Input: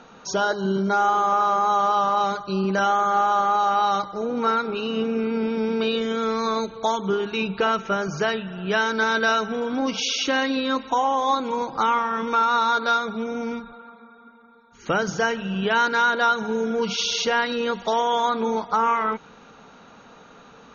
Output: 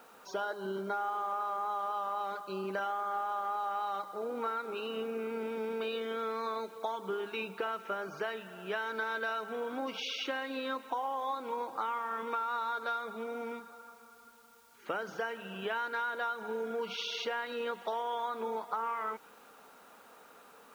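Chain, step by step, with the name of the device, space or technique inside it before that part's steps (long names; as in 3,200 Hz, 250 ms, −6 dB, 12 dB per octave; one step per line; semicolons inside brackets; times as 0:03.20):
baby monitor (band-pass filter 370–3,000 Hz; downward compressor, threshold −24 dBFS, peak gain reduction 8.5 dB; white noise bed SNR 29 dB)
level −7.5 dB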